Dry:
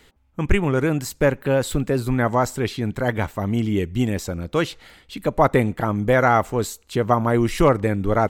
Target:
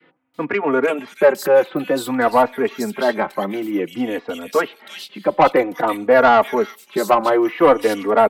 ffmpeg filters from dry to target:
-filter_complex "[0:a]highpass=f=190:w=0.5412,highpass=f=190:w=1.3066,equalizer=f=7300:t=o:w=0.7:g=-9,acrossover=split=2700[s0][s1];[s1]adelay=340[s2];[s0][s2]amix=inputs=2:normalize=0,acrossover=split=260|470|6700[s3][s4][s5][s6];[s3]acompressor=threshold=0.01:ratio=4[s7];[s7][s4][s5][s6]amix=inputs=4:normalize=0,adynamicequalizer=threshold=0.0316:dfrequency=790:dqfactor=0.84:tfrequency=790:tqfactor=0.84:attack=5:release=100:ratio=0.375:range=2:mode=boostabove:tftype=bell,asoftclip=type=tanh:threshold=0.355,asplit=2[s8][s9];[s9]adelay=3.5,afreqshift=-0.54[s10];[s8][s10]amix=inputs=2:normalize=1,volume=2.37"

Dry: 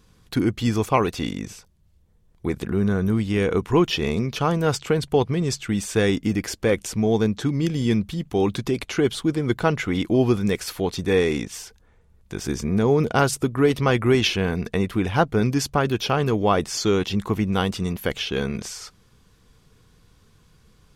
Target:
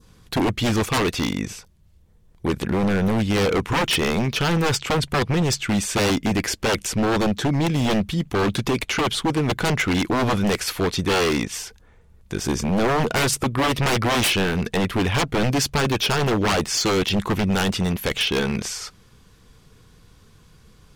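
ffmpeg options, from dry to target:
-af "adynamicequalizer=threshold=0.0141:dfrequency=2300:dqfactor=1:tfrequency=2300:tqfactor=1:attack=5:release=100:ratio=0.375:range=2:mode=boostabove:tftype=bell,aeval=exprs='0.112*(abs(mod(val(0)/0.112+3,4)-2)-1)':c=same,volume=1.68"

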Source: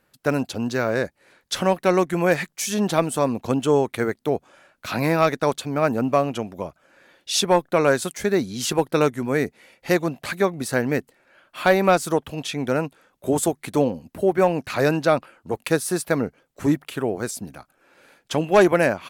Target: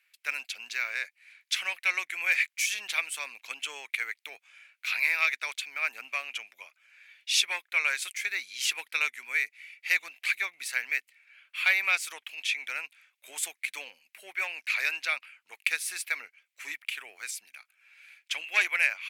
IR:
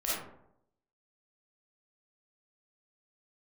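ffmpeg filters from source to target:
-af "aeval=exprs='0.473*(cos(1*acos(clip(val(0)/0.473,-1,1)))-cos(1*PI/2))+0.00299*(cos(8*acos(clip(val(0)/0.473,-1,1)))-cos(8*PI/2))':c=same,highpass=f=2300:t=q:w=5.1,volume=0.531"

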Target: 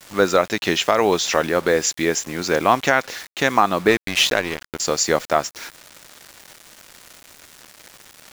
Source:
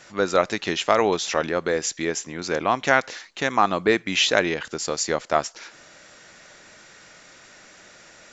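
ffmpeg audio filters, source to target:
-filter_complex "[0:a]asettb=1/sr,asplit=3[s0][s1][s2];[s0]atrim=end=3.884[s3];[s1]atrim=start=3.88:end=4.8,asetpts=PTS-STARTPTS,afade=t=in:d=0.004:c=qsin,afade=t=out:st=0.916:d=0.004:c=qsin,aeval=exprs='sgn(val(0))*max(abs(val(0))-0.0398,0)':c=same[s4];[s2]atrim=start=4.796[s5];[s3][s4]acrossfade=d=0.004:c1=hsin:c2=qsin[s6];[s6][s5]acrossfade=d=0.004:c1=qsin:c2=hsin,acrusher=bits=6:mix=0:aa=0.000001,alimiter=limit=0.422:level=0:latency=1:release=302,volume=1.88"

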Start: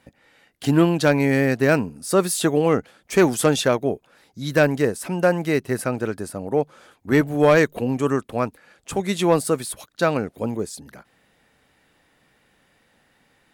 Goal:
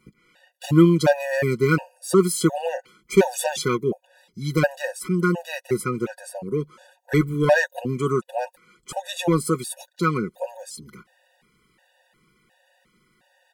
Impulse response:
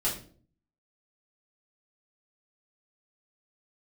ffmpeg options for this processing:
-af "aecho=1:1:5.5:0.61,afftfilt=real='re*gt(sin(2*PI*1.4*pts/sr)*(1-2*mod(floor(b*sr/1024/490),2)),0)':imag='im*gt(sin(2*PI*1.4*pts/sr)*(1-2*mod(floor(b*sr/1024/490),2)),0)':win_size=1024:overlap=0.75"

